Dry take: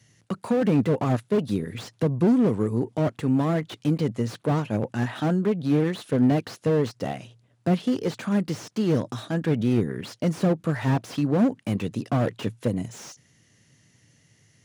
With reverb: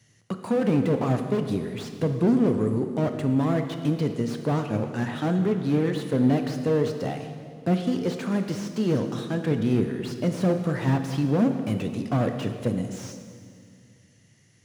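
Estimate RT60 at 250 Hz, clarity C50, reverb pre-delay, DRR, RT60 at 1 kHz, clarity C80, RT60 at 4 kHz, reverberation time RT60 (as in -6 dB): 2.6 s, 7.5 dB, 19 ms, 6.5 dB, 1.9 s, 8.5 dB, 1.9 s, 2.1 s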